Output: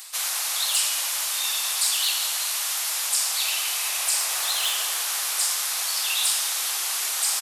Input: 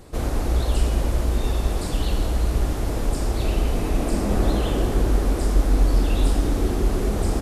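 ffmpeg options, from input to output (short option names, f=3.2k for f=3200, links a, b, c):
-filter_complex "[0:a]highpass=f=1k:w=0.5412,highpass=f=1k:w=1.3066,highshelf=f=5.8k:g=-8.5,areverse,acompressor=mode=upward:threshold=-40dB:ratio=2.5,areverse,asoftclip=type=hard:threshold=-30dB,acrossover=split=1800[a][b];[a]aecho=1:1:137:0.562[c];[b]crystalizer=i=9.5:c=0[d];[c][d]amix=inputs=2:normalize=0,volume=1.5dB"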